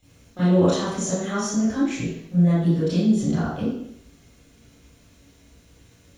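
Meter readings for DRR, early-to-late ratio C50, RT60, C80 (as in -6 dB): -14.5 dB, -3.0 dB, 0.70 s, 2.5 dB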